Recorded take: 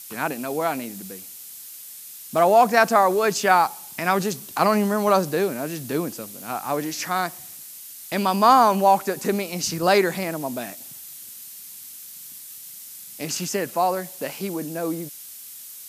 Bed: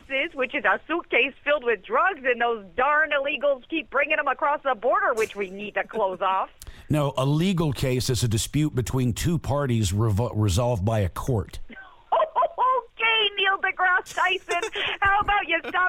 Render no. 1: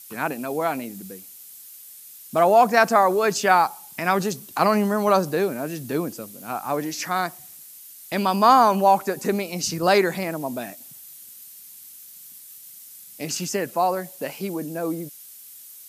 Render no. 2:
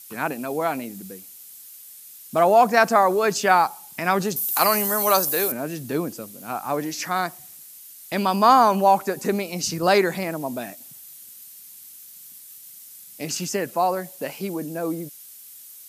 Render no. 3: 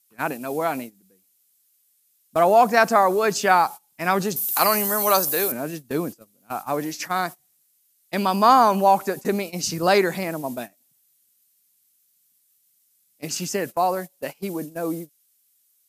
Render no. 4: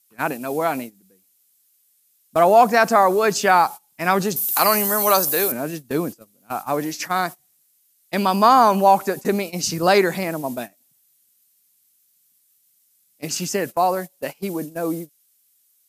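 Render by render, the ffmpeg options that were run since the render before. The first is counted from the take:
-af "afftdn=nr=6:nf=-41"
-filter_complex "[0:a]asettb=1/sr,asplit=3[a][b][c];[a]atrim=end=4.364[d];[b]atrim=start=4.36:end=5.52,asetpts=PTS-STARTPTS,afade=t=in:d=0.004:c=qsin,afade=t=out:st=1.156:d=0.004:c=qsin,aemphasis=mode=production:type=riaa[e];[c]atrim=start=5.516[f];[d][e]acrossfade=d=0.004:c1=hsin:c2=qsin[g];[g][f]acrossfade=d=0.004:c1=qsin:c2=hsin"
-af "agate=range=-21dB:threshold=-30dB:ratio=16:detection=peak"
-af "volume=2.5dB,alimiter=limit=-3dB:level=0:latency=1"

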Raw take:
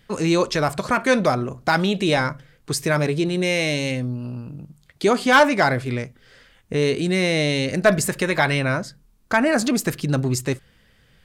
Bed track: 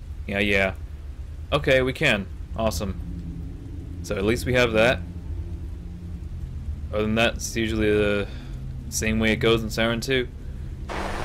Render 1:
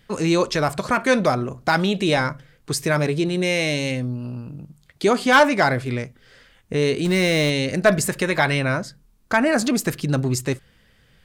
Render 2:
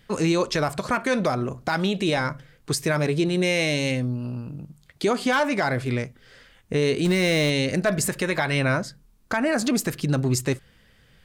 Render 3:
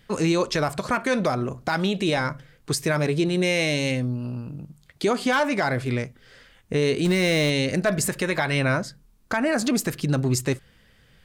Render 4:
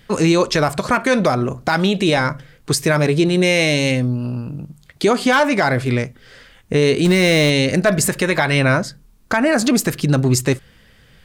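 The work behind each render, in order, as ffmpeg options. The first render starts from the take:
-filter_complex "[0:a]asettb=1/sr,asplit=3[a][b][c];[a]atrim=end=7.054[d];[b]atrim=start=7.05:end=7.5,asetpts=PTS-STARTPTS,afade=t=in:d=0.004:c=qsin,afade=t=out:st=0.446:d=0.004:c=qsin,aeval=exprs='val(0)+0.5*0.0398*sgn(val(0))':c=same[e];[c]atrim=start=7.496[f];[d][e]acrossfade=d=0.004:c1=hsin:c2=qsin[g];[g][f]acrossfade=d=0.004:c1=qsin:c2=hsin"
-af "alimiter=limit=-13dB:level=0:latency=1:release=182"
-af anull
-af "volume=7dB"

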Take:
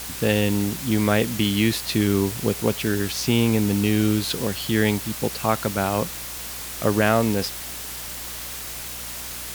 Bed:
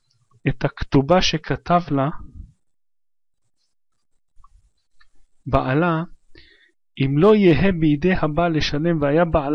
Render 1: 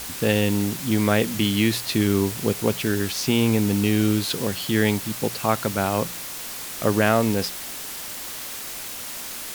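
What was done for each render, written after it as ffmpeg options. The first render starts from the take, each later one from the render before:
-af "bandreject=f=60:t=h:w=4,bandreject=f=120:t=h:w=4,bandreject=f=180:t=h:w=4"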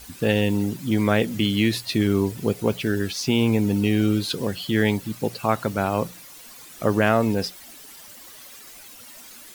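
-af "afftdn=nr=13:nf=-34"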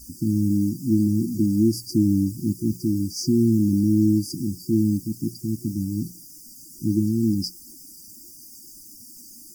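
-af "afftfilt=real='re*(1-between(b*sr/4096,360,4600))':imag='im*(1-between(b*sr/4096,360,4600))':win_size=4096:overlap=0.75,equalizer=f=660:w=0.44:g=5"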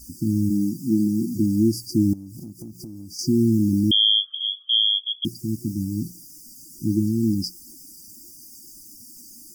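-filter_complex "[0:a]asplit=3[a][b][c];[a]afade=t=out:st=0.49:d=0.02[d];[b]highpass=f=130:w=0.5412,highpass=f=130:w=1.3066,afade=t=in:st=0.49:d=0.02,afade=t=out:st=1.34:d=0.02[e];[c]afade=t=in:st=1.34:d=0.02[f];[d][e][f]amix=inputs=3:normalize=0,asettb=1/sr,asplit=3[g][h][i];[g]atrim=end=2.134[j];[h]atrim=start=2.13:end=3.19,asetpts=PTS-STARTPTS,afade=t=in:d=0.004:c=qsin,afade=t=out:st=1.056:d=0.004:c=qsin,acompressor=threshold=-33dB:ratio=16:attack=3.2:release=140:knee=1:detection=peak[k];[i]atrim=start=3.186[l];[j][k]acrossfade=d=0.004:c1=hsin:c2=qsin[m];[m][l]acrossfade=d=0.004:c1=qsin:c2=hsin,asettb=1/sr,asplit=3[n][o][p];[n]atrim=end=3.914[q];[o]atrim=start=3.91:end=5.25,asetpts=PTS-STARTPTS,afade=t=in:d=0.004:c=qsin,afade=t=out:st=1.336:d=0.004:c=qsin,lowpass=f=3k:t=q:w=0.5098,lowpass=f=3k:t=q:w=0.6013,lowpass=f=3k:t=q:w=0.9,lowpass=f=3k:t=q:w=2.563,afreqshift=-3500[r];[p]atrim=start=5.246[s];[q][r]acrossfade=d=0.004:c1=hsin:c2=qsin[t];[t][s]acrossfade=d=0.004:c1=qsin:c2=hsin"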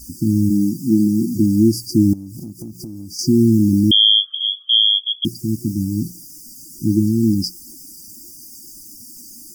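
-af "volume=5.5dB"

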